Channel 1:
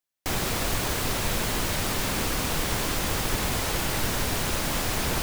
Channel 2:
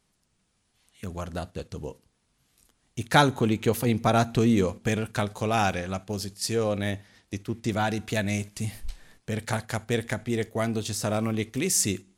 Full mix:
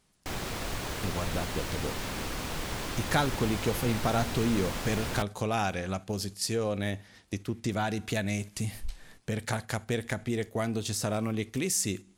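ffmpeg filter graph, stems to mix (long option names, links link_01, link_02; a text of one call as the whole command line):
ffmpeg -i stem1.wav -i stem2.wav -filter_complex "[0:a]highshelf=frequency=8400:gain=-8,volume=-7dB[link_01];[1:a]acompressor=threshold=-33dB:ratio=2,volume=2dB[link_02];[link_01][link_02]amix=inputs=2:normalize=0" out.wav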